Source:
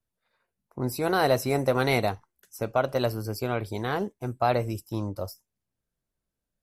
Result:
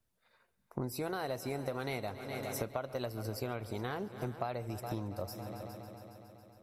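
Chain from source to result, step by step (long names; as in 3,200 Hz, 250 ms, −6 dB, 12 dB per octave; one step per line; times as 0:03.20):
echo machine with several playback heads 138 ms, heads all three, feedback 59%, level −22 dB
downward compressor 12 to 1, threshold −38 dBFS, peak gain reduction 20.5 dB
level +4 dB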